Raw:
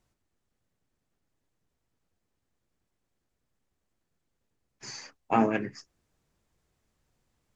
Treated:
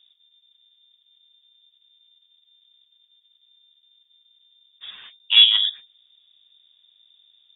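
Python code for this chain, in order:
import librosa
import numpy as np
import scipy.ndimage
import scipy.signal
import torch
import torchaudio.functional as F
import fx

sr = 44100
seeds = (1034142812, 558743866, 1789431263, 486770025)

p1 = fx.tilt_shelf(x, sr, db=9.5, hz=660.0)
p2 = fx.level_steps(p1, sr, step_db=18)
p3 = p1 + (p2 * 10.0 ** (-0.5 / 20.0))
p4 = 10.0 ** (-9.5 / 20.0) * np.tanh(p3 / 10.0 ** (-9.5 / 20.0))
p5 = fx.freq_invert(p4, sr, carrier_hz=3600)
y = p5 * 10.0 ** (4.0 / 20.0)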